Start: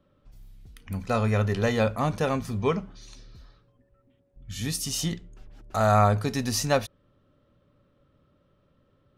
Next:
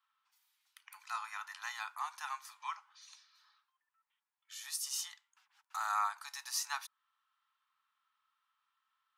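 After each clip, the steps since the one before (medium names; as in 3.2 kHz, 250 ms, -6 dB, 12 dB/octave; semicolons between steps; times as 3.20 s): steep high-pass 870 Hz 72 dB/octave; dynamic bell 2.7 kHz, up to -6 dB, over -47 dBFS, Q 1; trim -6 dB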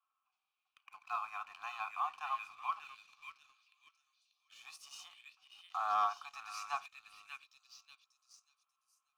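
vowel filter a; repeats whose band climbs or falls 589 ms, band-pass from 2.6 kHz, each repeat 0.7 oct, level -1.5 dB; waveshaping leveller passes 1; trim +8.5 dB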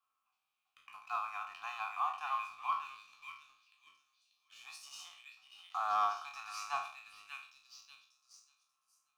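spectral sustain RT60 0.47 s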